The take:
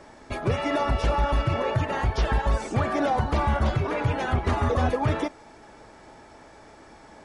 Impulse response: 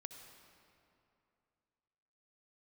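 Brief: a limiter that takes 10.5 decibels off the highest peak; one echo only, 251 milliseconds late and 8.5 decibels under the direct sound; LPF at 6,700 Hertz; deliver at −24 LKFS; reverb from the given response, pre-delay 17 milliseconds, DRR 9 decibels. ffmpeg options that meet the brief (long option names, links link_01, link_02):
-filter_complex "[0:a]lowpass=6700,alimiter=level_in=1dB:limit=-24dB:level=0:latency=1,volume=-1dB,aecho=1:1:251:0.376,asplit=2[link_01][link_02];[1:a]atrim=start_sample=2205,adelay=17[link_03];[link_02][link_03]afir=irnorm=-1:irlink=0,volume=-4.5dB[link_04];[link_01][link_04]amix=inputs=2:normalize=0,volume=8.5dB"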